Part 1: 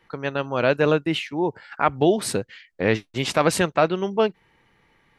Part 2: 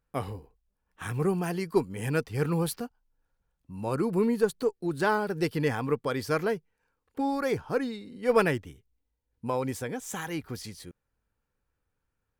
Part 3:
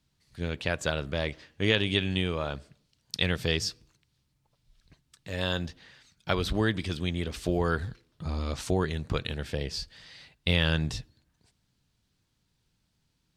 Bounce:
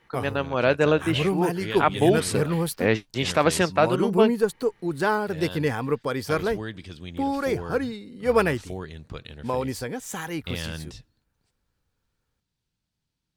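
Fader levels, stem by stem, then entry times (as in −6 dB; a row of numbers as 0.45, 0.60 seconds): −1.0, +2.5, −8.0 decibels; 0.00, 0.00, 0.00 seconds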